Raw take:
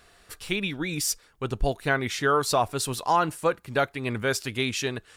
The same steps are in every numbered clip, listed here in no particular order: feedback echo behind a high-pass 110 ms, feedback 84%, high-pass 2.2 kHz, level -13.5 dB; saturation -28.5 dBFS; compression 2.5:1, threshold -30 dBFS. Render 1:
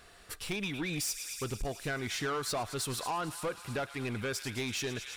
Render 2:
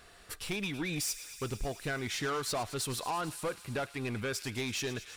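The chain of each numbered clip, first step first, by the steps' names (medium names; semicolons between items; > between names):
feedback echo behind a high-pass > compression > saturation; compression > saturation > feedback echo behind a high-pass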